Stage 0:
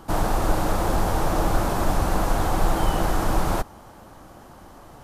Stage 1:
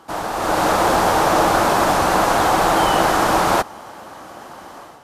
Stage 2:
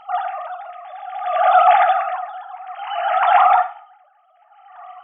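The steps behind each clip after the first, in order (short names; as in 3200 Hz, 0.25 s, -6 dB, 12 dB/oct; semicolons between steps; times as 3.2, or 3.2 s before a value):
HPF 600 Hz 6 dB/oct; high shelf 9200 Hz -9.5 dB; AGC gain up to 10.5 dB; gain +2.5 dB
sine-wave speech; reverb RT60 0.70 s, pre-delay 6 ms, DRR 6.5 dB; dB-linear tremolo 0.59 Hz, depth 25 dB; gain +4 dB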